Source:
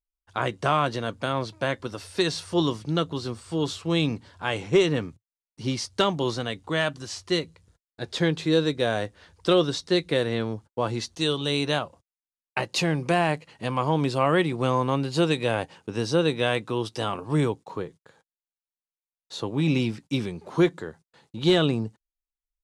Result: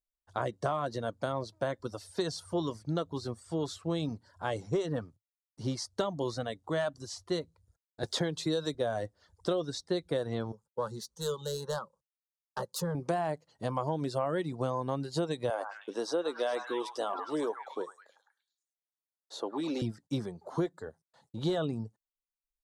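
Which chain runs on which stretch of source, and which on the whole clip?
8.03–8.75 s: treble shelf 2.5 kHz +8.5 dB + three bands compressed up and down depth 40%
10.52–12.95 s: self-modulated delay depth 0.08 ms + peaking EQ 270 Hz -10 dB 0.42 oct + static phaser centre 460 Hz, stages 8
15.50–19.82 s: high-pass 280 Hz 24 dB/octave + repeats whose band climbs or falls 104 ms, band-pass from 1.1 kHz, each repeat 0.7 oct, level -0.5 dB
whole clip: reverb removal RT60 0.65 s; fifteen-band graphic EQ 100 Hz +3 dB, 630 Hz +6 dB, 2.5 kHz -12 dB; compression, threshold -22 dBFS; trim -5 dB

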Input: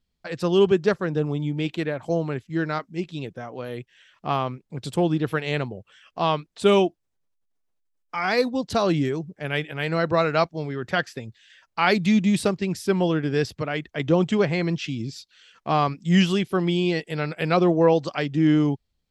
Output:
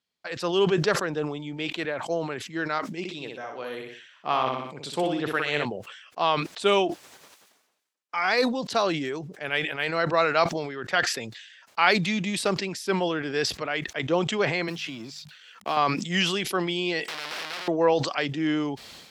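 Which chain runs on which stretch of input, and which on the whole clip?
2.99–5.65 s: de-esser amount 35% + feedback delay 61 ms, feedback 36%, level -5 dB
14.68–15.77 s: companding laws mixed up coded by A + hum notches 50/100/150/200 Hz + three bands compressed up and down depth 70%
17.08–17.68 s: one-bit comparator + distance through air 410 m + spectrum-flattening compressor 4:1
whole clip: frequency weighting A; decay stretcher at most 58 dB/s

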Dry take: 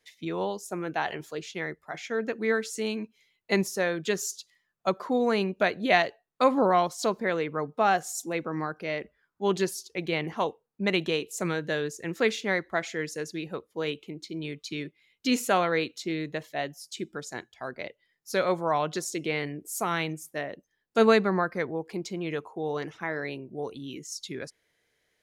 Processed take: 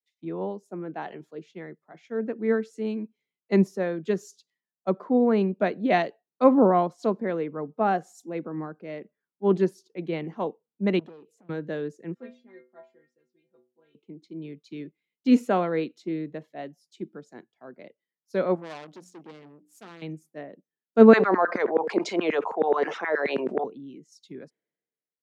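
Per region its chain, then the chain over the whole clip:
10.99–11.49 s: treble shelf 2.4 kHz -8 dB + compression 2.5:1, threshold -43 dBFS + transformer saturation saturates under 1.1 kHz
12.14–13.95 s: treble shelf 5.5 kHz -8 dB + inharmonic resonator 120 Hz, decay 0.41 s, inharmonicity 0.008
18.55–20.02 s: companding laws mixed up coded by A + hum notches 60/120/180/240/300 Hz + transformer saturation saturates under 4 kHz
21.13–23.64 s: low-pass 8.7 kHz 24 dB/octave + LFO high-pass saw down 9.4 Hz 420–1800 Hz + level flattener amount 70%
whole clip: high-pass 190 Hz 24 dB/octave; tilt EQ -4.5 dB/octave; three bands expanded up and down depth 70%; trim -4 dB

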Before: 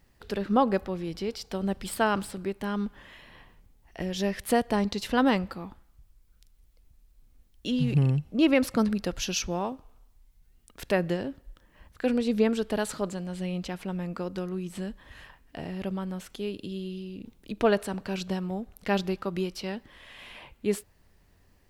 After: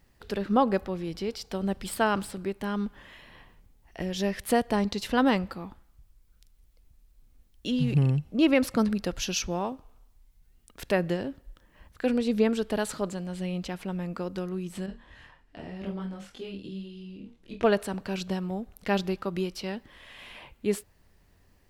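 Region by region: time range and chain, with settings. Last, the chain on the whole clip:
14.86–17.64 s: distance through air 52 m + flutter echo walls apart 4.4 m, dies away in 0.23 s + detune thickener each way 25 cents
whole clip: none

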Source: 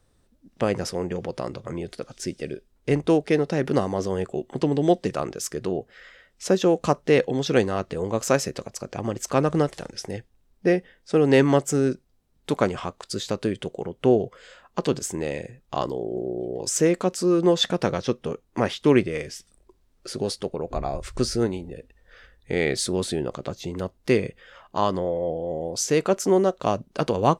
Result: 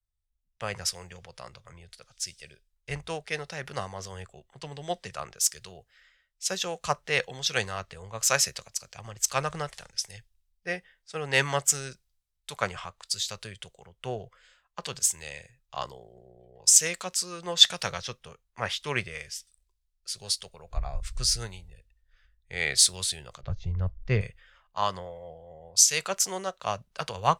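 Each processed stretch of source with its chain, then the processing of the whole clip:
23.41–24.21 s: steep low-pass 6.9 kHz 48 dB/octave + tilt EQ -3.5 dB/octave
whole clip: amplifier tone stack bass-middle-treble 10-0-10; three bands expanded up and down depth 70%; trim +3.5 dB

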